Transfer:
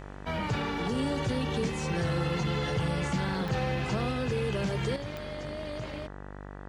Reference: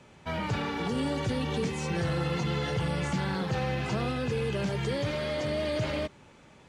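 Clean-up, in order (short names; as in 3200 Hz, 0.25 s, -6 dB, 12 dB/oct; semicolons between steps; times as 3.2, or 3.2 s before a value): de-click; de-hum 49 Hz, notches 40; gain correction +8 dB, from 4.96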